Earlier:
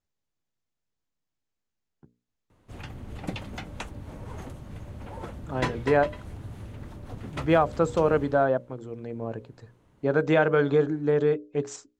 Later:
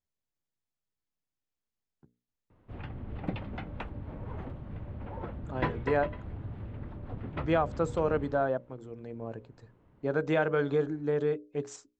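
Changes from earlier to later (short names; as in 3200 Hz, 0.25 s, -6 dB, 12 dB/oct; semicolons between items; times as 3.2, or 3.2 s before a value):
speech -6.0 dB; background: add air absorption 430 m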